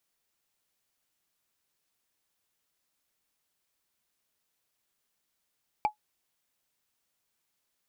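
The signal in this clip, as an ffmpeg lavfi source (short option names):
-f lavfi -i "aevalsrc='0.133*pow(10,-3*t/0.11)*sin(2*PI*847*t)+0.0422*pow(10,-3*t/0.033)*sin(2*PI*2335.2*t)+0.0133*pow(10,-3*t/0.015)*sin(2*PI*4577.2*t)+0.00422*pow(10,-3*t/0.008)*sin(2*PI*7566.3*t)+0.00133*pow(10,-3*t/0.005)*sin(2*PI*11299*t)':d=0.45:s=44100"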